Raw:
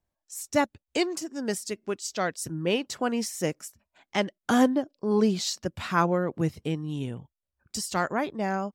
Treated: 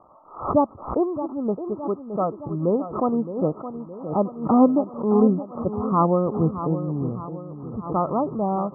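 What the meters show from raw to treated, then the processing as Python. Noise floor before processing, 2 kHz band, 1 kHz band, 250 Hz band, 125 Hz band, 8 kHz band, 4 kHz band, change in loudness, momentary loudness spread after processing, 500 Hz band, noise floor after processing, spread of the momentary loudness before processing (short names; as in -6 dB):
under -85 dBFS, under -25 dB, +5.5 dB, +6.0 dB, +6.0 dB, under -40 dB, under -40 dB, +5.0 dB, 13 LU, +5.5 dB, -43 dBFS, 10 LU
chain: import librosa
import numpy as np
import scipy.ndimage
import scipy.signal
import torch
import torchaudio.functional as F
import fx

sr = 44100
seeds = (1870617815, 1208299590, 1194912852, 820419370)

y = x + 0.5 * 10.0 ** (-25.5 / 20.0) * np.diff(np.sign(x), prepend=np.sign(x[:1]))
y = scipy.signal.sosfilt(scipy.signal.cheby1(10, 1.0, 1300.0, 'lowpass', fs=sr, output='sos'), y)
y = fx.echo_feedback(y, sr, ms=617, feedback_pct=50, wet_db=-11.5)
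y = fx.pre_swell(y, sr, db_per_s=120.0)
y = F.gain(torch.from_numpy(y), 5.5).numpy()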